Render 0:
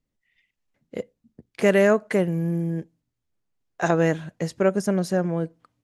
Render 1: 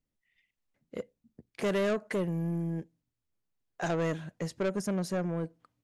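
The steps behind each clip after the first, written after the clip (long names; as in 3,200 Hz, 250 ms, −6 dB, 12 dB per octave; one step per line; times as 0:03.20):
soft clipping −19.5 dBFS, distortion −10 dB
level −5.5 dB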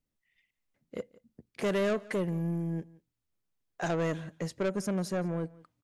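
single-tap delay 174 ms −22.5 dB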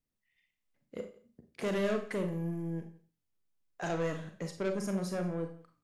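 four-comb reverb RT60 0.35 s, combs from 30 ms, DRR 5 dB
level −4 dB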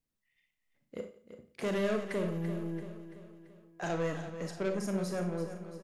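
repeating echo 337 ms, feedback 50%, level −11 dB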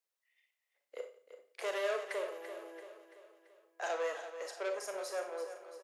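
Butterworth high-pass 460 Hz 36 dB per octave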